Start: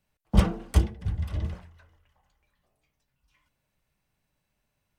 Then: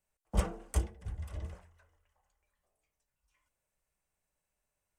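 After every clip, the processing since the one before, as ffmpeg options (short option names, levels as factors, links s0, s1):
-af "equalizer=f=125:t=o:w=1:g=-8,equalizer=f=250:t=o:w=1:g=-6,equalizer=f=500:t=o:w=1:g=3,equalizer=f=4000:t=o:w=1:g=-7,equalizer=f=8000:t=o:w=1:g=9,volume=0.422"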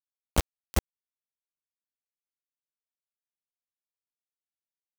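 -af "acrusher=bits=3:mix=0:aa=0.000001,volume=1.26"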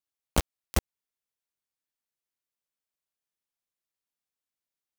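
-af "acompressor=threshold=0.0794:ratio=6,volume=1.41"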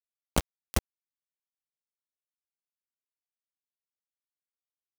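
-af "acrusher=bits=2:mix=0:aa=0.5,volume=0.75"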